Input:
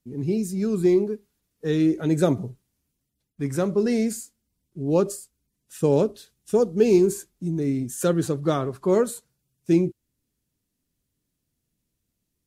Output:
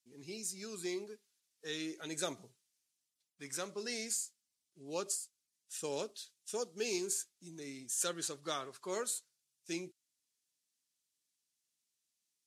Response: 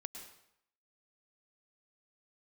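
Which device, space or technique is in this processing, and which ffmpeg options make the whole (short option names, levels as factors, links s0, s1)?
piezo pickup straight into a mixer: -af "lowpass=6400,aderivative,volume=1.68"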